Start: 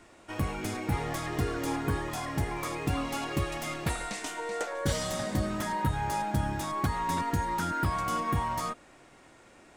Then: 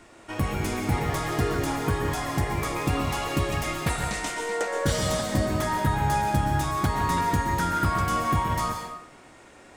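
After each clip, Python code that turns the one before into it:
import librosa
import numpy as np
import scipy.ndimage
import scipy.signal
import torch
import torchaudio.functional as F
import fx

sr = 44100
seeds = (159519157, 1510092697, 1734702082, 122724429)

y = fx.rev_plate(x, sr, seeds[0], rt60_s=0.68, hf_ratio=0.85, predelay_ms=110, drr_db=3.5)
y = y * librosa.db_to_amplitude(4.0)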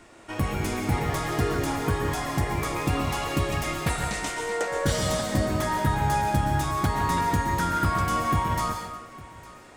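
y = x + 10.0 ** (-20.0 / 20.0) * np.pad(x, (int(857 * sr / 1000.0), 0))[:len(x)]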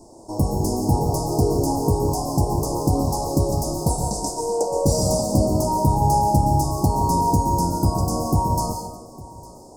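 y = scipy.signal.sosfilt(scipy.signal.cheby1(4, 1.0, [930.0, 4900.0], 'bandstop', fs=sr, output='sos'), x)
y = y * librosa.db_to_amplitude(7.0)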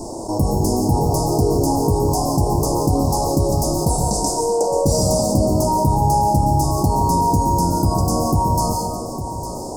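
y = fx.env_flatten(x, sr, amount_pct=50)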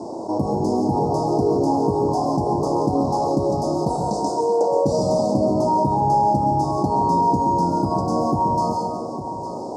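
y = fx.bandpass_edges(x, sr, low_hz=180.0, high_hz=3200.0)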